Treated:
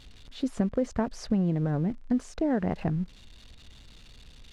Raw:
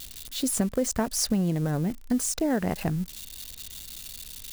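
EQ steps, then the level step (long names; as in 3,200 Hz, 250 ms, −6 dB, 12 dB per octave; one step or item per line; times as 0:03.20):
head-to-tape spacing loss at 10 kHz 23 dB
high-shelf EQ 5,300 Hz −6.5 dB
0.0 dB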